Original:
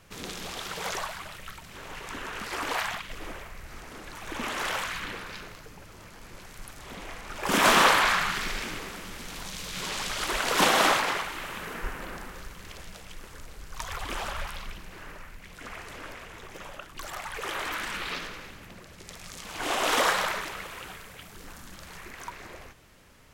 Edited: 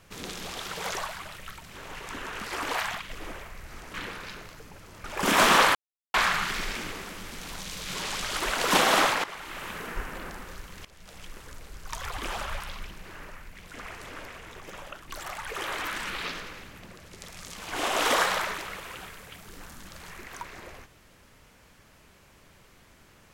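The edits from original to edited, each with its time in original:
3.94–5 cut
6.1–7.3 cut
8.01 insert silence 0.39 s
11.11–11.52 fade in, from -14 dB
12.72–13.04 fade in quadratic, from -12 dB

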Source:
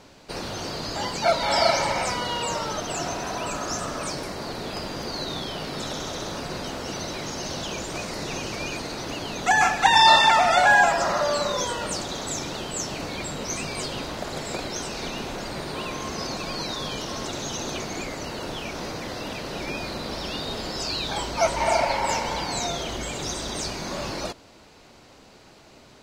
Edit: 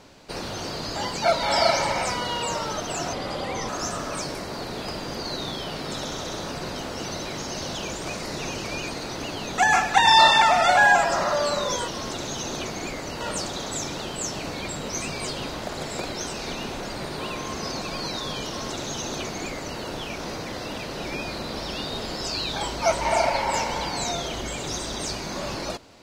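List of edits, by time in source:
3.13–3.57 speed 79%
17.02–18.35 copy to 11.76

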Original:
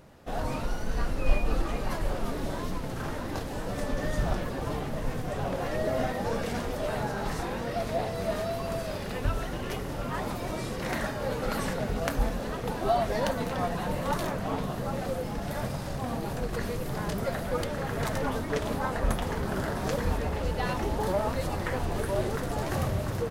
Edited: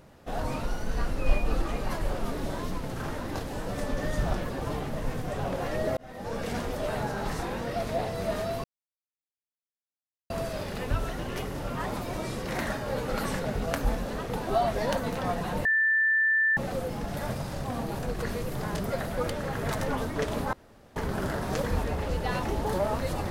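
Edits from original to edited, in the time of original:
5.97–6.52 fade in
8.64 insert silence 1.66 s
13.99–14.91 bleep 1770 Hz -20.5 dBFS
18.87–19.3 room tone

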